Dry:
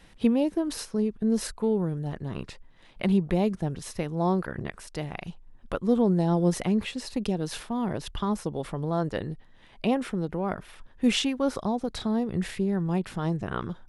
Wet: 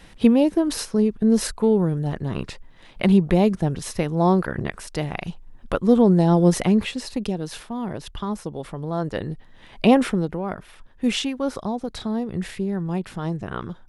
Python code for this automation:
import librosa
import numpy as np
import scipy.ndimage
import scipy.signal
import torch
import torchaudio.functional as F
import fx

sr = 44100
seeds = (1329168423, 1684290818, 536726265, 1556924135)

y = fx.gain(x, sr, db=fx.line((6.7, 7.0), (7.53, 0.0), (8.82, 0.0), (10.01, 11.0), (10.43, 1.0)))